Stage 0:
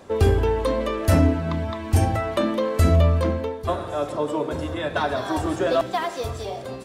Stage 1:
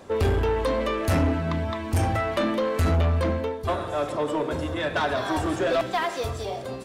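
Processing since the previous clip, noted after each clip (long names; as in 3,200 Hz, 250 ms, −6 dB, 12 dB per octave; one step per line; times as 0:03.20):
dynamic equaliser 2,100 Hz, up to +4 dB, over −37 dBFS, Q 0.82
soft clipping −17.5 dBFS, distortion −11 dB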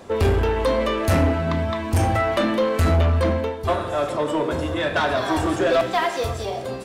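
on a send at −8 dB: Bessel high-pass filter 350 Hz + convolution reverb RT60 0.70 s, pre-delay 6 ms
on the sum: level +3.5 dB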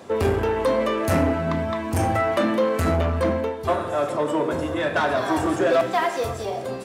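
high-pass filter 110 Hz 12 dB per octave
dynamic equaliser 3,700 Hz, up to −5 dB, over −44 dBFS, Q 1.1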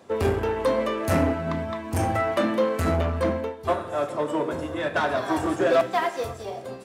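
expander for the loud parts 1.5 to 1, over −33 dBFS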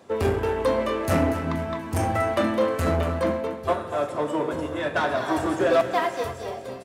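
repeating echo 239 ms, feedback 46%, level −11.5 dB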